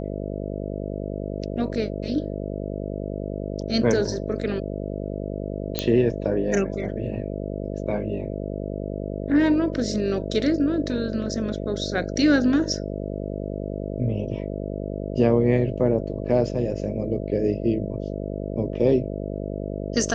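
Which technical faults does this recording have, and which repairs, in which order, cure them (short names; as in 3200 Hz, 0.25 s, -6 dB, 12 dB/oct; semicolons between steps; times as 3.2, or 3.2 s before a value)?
buzz 50 Hz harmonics 13 -30 dBFS
5.79 pop -7 dBFS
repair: de-click; de-hum 50 Hz, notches 13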